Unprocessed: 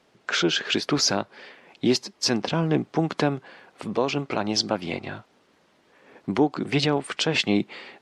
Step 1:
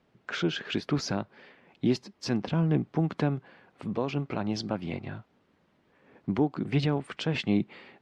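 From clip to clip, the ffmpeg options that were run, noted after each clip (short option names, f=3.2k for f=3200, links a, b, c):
-af "bass=f=250:g=10,treble=f=4k:g=-9,volume=-8dB"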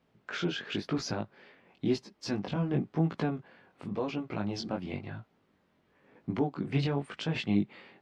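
-af "flanger=delay=17.5:depth=4.9:speed=0.95"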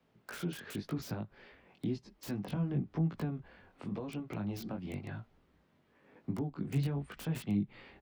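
-filter_complex "[0:a]acrossover=split=230[a][b];[b]acompressor=threshold=-40dB:ratio=8[c];[a][c]amix=inputs=2:normalize=0,acrossover=split=150|1600[d][e][f];[d]asplit=6[g][h][i][j][k][l];[h]adelay=202,afreqshift=-84,volume=-23.5dB[m];[i]adelay=404,afreqshift=-168,volume=-27.5dB[n];[j]adelay=606,afreqshift=-252,volume=-31.5dB[o];[k]adelay=808,afreqshift=-336,volume=-35.5dB[p];[l]adelay=1010,afreqshift=-420,volume=-39.6dB[q];[g][m][n][o][p][q]amix=inputs=6:normalize=0[r];[f]aeval=exprs='(mod(119*val(0)+1,2)-1)/119':c=same[s];[r][e][s]amix=inputs=3:normalize=0,volume=-1dB"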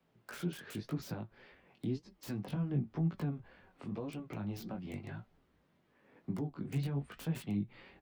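-af "flanger=delay=5.2:depth=3.8:regen=65:speed=1.9:shape=sinusoidal,volume=2dB"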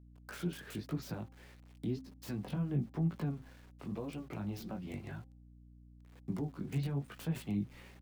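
-af "aeval=exprs='val(0)*gte(abs(val(0)),0.00112)':c=same,bandreject=f=262.5:t=h:w=4,bandreject=f=525:t=h:w=4,bandreject=f=787.5:t=h:w=4,aeval=exprs='val(0)+0.00158*(sin(2*PI*60*n/s)+sin(2*PI*2*60*n/s)/2+sin(2*PI*3*60*n/s)/3+sin(2*PI*4*60*n/s)/4+sin(2*PI*5*60*n/s)/5)':c=same"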